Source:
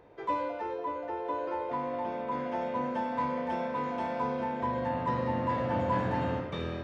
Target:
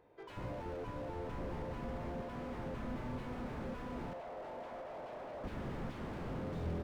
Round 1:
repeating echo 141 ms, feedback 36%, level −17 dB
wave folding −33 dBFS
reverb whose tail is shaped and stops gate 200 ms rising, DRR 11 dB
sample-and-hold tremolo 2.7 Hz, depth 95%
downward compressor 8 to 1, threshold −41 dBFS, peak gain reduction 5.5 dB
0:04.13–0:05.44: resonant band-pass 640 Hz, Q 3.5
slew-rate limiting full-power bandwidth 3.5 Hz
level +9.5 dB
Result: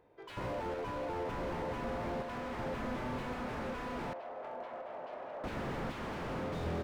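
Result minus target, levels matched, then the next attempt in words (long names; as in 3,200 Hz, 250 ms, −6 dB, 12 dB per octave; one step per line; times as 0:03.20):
slew-rate limiting: distortion −6 dB
repeating echo 141 ms, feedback 36%, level −17 dB
wave folding −33 dBFS
reverb whose tail is shaped and stops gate 200 ms rising, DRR 11 dB
sample-and-hold tremolo 2.7 Hz, depth 95%
downward compressor 8 to 1, threshold −41 dBFS, peak gain reduction 5.5 dB
0:04.13–0:05.44: resonant band-pass 640 Hz, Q 3.5
slew-rate limiting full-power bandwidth 1.5 Hz
level +9.5 dB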